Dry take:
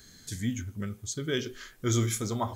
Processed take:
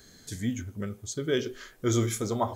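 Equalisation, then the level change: peaking EQ 540 Hz +7.5 dB 1.8 oct; -1.5 dB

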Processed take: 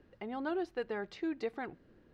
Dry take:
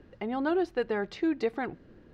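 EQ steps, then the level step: bass shelf 360 Hz -3 dB; -6.5 dB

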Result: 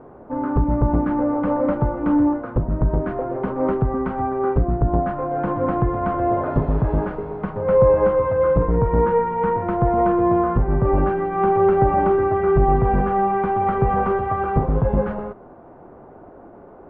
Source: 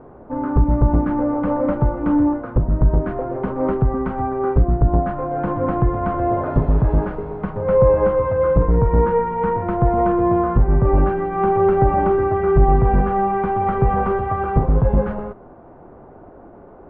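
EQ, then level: bass shelf 100 Hz -6.5 dB; 0.0 dB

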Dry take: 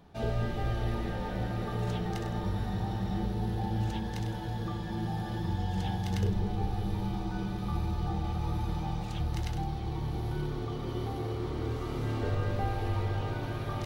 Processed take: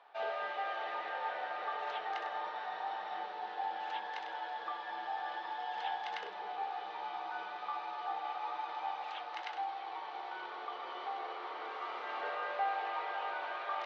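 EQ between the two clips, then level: high-pass 690 Hz 24 dB/octave; low-pass 3.1 kHz 12 dB/octave; distance through air 120 m; +5.0 dB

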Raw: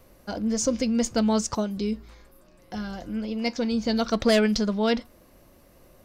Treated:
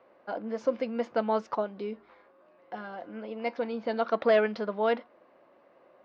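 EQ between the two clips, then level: high-pass 560 Hz 12 dB/octave; low-pass 1.4 kHz 6 dB/octave; distance through air 340 m; +4.5 dB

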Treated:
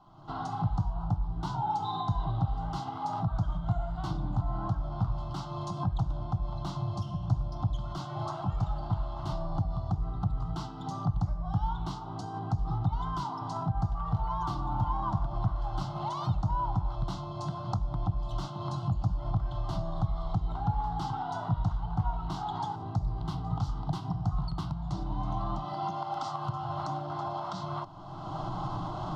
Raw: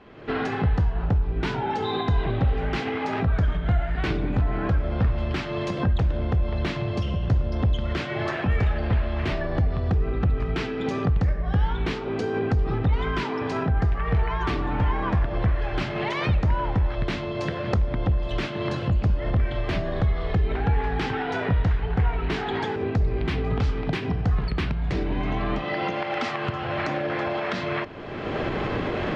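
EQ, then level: static phaser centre 350 Hz, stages 8; static phaser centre 1 kHz, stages 4; -1.0 dB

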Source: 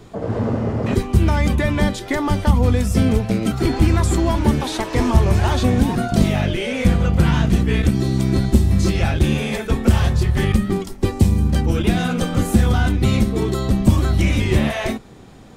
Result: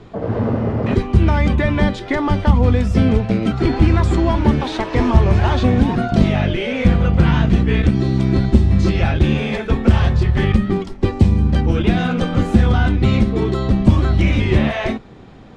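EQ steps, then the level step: low-pass 3.7 kHz 12 dB/octave; +2.0 dB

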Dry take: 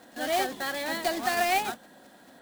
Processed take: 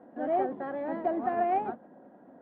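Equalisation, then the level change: high-pass 300 Hz 6 dB/octave; Bessel low-pass 550 Hz, order 2; distance through air 470 m; +7.0 dB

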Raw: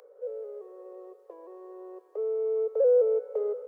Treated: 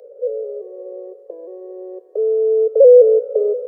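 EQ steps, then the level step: resonant low shelf 770 Hz +10 dB, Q 3; -2.0 dB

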